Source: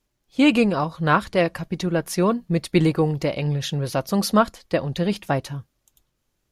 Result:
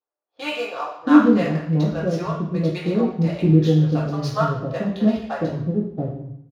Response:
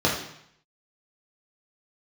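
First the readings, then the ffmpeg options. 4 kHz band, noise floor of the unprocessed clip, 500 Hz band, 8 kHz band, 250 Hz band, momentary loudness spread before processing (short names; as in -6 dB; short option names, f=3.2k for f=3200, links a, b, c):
-5.0 dB, -74 dBFS, -1.0 dB, under -10 dB, +3.5 dB, 7 LU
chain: -filter_complex "[0:a]acrossover=split=570[a][b];[a]adelay=680[c];[c][b]amix=inputs=2:normalize=0,adynamicsmooth=sensitivity=7.5:basefreq=1k[d];[1:a]atrim=start_sample=2205[e];[d][e]afir=irnorm=-1:irlink=0,volume=-18dB"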